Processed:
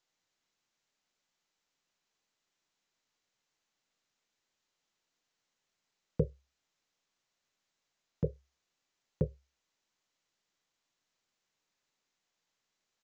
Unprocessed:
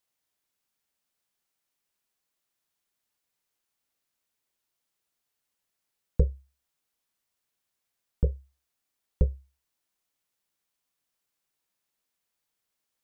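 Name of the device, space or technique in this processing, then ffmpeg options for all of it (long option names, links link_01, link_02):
Bluetooth headset: -af "highpass=frequency=110:width=0.5412,highpass=frequency=110:width=1.3066,aresample=16000,aresample=44100" -ar 16000 -c:a sbc -b:a 64k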